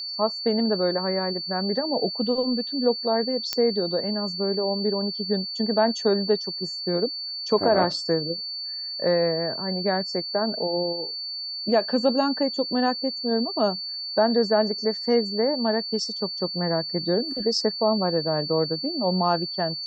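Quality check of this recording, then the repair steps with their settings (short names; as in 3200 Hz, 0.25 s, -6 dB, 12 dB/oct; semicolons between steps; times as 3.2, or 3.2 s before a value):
tone 4500 Hz -30 dBFS
3.53 pop -8 dBFS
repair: de-click; notch 4500 Hz, Q 30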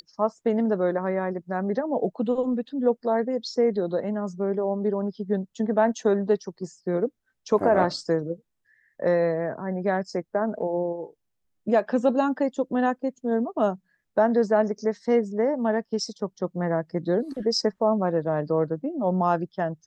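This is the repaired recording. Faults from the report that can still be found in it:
none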